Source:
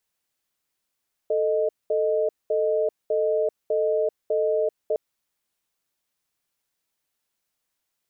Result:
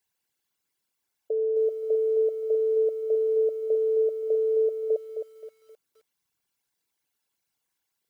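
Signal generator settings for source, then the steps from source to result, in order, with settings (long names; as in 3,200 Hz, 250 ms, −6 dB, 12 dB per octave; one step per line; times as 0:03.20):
tone pair in a cadence 441 Hz, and 619 Hz, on 0.39 s, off 0.21 s, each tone −22.5 dBFS 3.66 s
spectral envelope exaggerated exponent 2
notch comb filter 620 Hz
feedback echo at a low word length 263 ms, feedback 35%, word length 10 bits, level −7.5 dB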